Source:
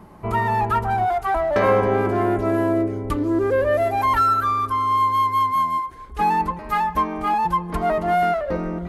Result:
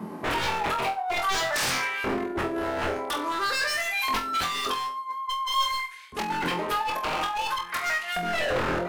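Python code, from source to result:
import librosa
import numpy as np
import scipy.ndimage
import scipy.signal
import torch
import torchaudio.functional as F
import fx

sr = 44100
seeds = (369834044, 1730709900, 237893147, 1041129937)

y = fx.filter_lfo_highpass(x, sr, shape='saw_up', hz=0.49, low_hz=200.0, high_hz=3100.0, q=2.0)
y = fx.over_compress(y, sr, threshold_db=-22.0, ratio=-0.5)
y = 10.0 ** (-23.0 / 20.0) * (np.abs((y / 10.0 ** (-23.0 / 20.0) + 3.0) % 4.0 - 2.0) - 1.0)
y = fx.room_flutter(y, sr, wall_m=4.0, rt60_s=0.3)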